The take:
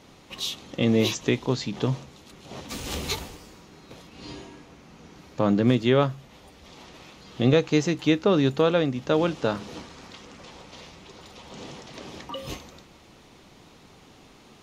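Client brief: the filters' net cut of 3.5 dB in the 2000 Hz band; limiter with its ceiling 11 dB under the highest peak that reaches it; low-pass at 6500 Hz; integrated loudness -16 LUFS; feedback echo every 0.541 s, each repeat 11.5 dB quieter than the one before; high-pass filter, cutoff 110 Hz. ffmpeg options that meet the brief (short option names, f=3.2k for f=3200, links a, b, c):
-af "highpass=110,lowpass=6.5k,equalizer=f=2k:t=o:g=-4.5,alimiter=limit=-18.5dB:level=0:latency=1,aecho=1:1:541|1082|1623:0.266|0.0718|0.0194,volume=16dB"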